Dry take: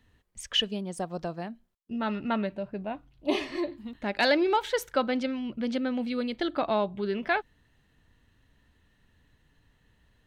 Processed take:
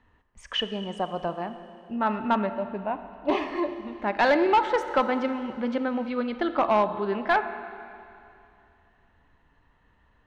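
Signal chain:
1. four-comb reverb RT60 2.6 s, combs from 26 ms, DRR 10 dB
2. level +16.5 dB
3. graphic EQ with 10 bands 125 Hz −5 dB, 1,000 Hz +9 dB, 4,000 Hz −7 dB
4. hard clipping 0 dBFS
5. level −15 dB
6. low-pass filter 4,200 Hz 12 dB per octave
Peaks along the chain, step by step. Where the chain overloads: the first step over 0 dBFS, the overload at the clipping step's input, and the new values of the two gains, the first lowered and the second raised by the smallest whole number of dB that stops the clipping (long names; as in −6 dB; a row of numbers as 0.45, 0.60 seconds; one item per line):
−12.5, +4.0, +8.5, 0.0, −15.0, −14.5 dBFS
step 2, 8.5 dB
step 2 +7.5 dB, step 5 −6 dB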